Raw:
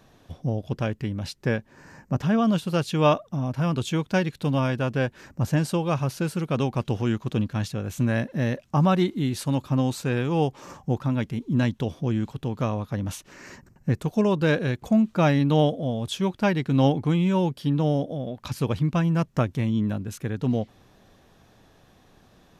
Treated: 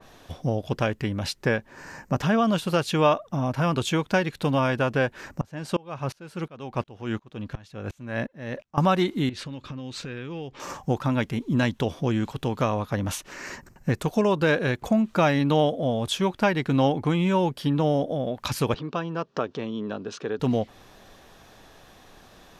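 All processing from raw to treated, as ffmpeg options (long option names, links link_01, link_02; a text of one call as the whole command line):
ffmpeg -i in.wav -filter_complex "[0:a]asettb=1/sr,asplit=3[link_01][link_02][link_03];[link_01]atrim=end=5.414[link_04];[link_02]atrim=start=5.41:end=8.78,asetpts=PTS-STARTPTS,afade=type=in:duration=0.004:curve=qsin,afade=type=out:start_time=3.366:duration=0.004:curve=qsin,lowpass=frequency=3000:poles=1,aeval=exprs='val(0)*pow(10,-28*if(lt(mod(-2.8*n/s,1),2*abs(-2.8)/1000),1-mod(-2.8*n/s,1)/(2*abs(-2.8)/1000),(mod(-2.8*n/s,1)-2*abs(-2.8)/1000)/(1-2*abs(-2.8)/1000))/20)':channel_layout=same[link_05];[link_03]atrim=start=8.776[link_06];[link_04][link_05]acrossfade=duration=0.004:curve1=hsin:curve2=qsin[link_07];[link_07][link_06]acrossfade=duration=0.004:curve1=qsin:curve2=hsin,asettb=1/sr,asplit=3[link_08][link_09][link_10];[link_08]atrim=end=9.294[link_11];[link_09]atrim=start=9.29:end=10.6,asetpts=PTS-STARTPTS,afade=type=in:duration=0.004:curve=qsin,afade=type=out:start_time=1.306:duration=0.004:curve=qsin,lowpass=3900,equalizer=frequency=820:width_type=o:width=1.1:gain=-9.5,acompressor=threshold=-33dB:ratio=16:attack=3.2:release=140:knee=1:detection=peak[link_12];[link_10]atrim=start=10.596[link_13];[link_11][link_12]acrossfade=duration=0.004:curve1=hsin:curve2=qsin[link_14];[link_14][link_13]acrossfade=duration=0.004:curve1=qsin:curve2=hsin,asettb=1/sr,asplit=3[link_15][link_16][link_17];[link_15]atrim=end=18.744[link_18];[link_16]atrim=start=18.74:end=20.4,asetpts=PTS-STARTPTS,afade=type=in:duration=0.004:curve=qsin,afade=type=out:start_time=1.656:duration=0.004:curve=qsin,acompressor=threshold=-32dB:ratio=2:attack=3.2:release=140:knee=1:detection=peak,highpass=210,equalizer=frequency=430:width_type=q:width=4:gain=9,equalizer=frequency=1200:width_type=q:width=4:gain=3,equalizer=frequency=2100:width_type=q:width=4:gain=-10,lowpass=frequency=5100:width=0.5412,lowpass=frequency=5100:width=1.3066[link_19];[link_17]atrim=start=20.396[link_20];[link_18][link_19]acrossfade=duration=0.004:curve1=hsin:curve2=qsin[link_21];[link_21][link_20]acrossfade=duration=0.004:curve1=qsin:curve2=hsin,equalizer=frequency=130:width=0.4:gain=-8.5,acompressor=threshold=-29dB:ratio=2,adynamicequalizer=threshold=0.00355:dfrequency=2500:dqfactor=0.7:tfrequency=2500:tqfactor=0.7:attack=5:release=100:ratio=0.375:range=2.5:mode=cutabove:tftype=highshelf,volume=8.5dB" out.wav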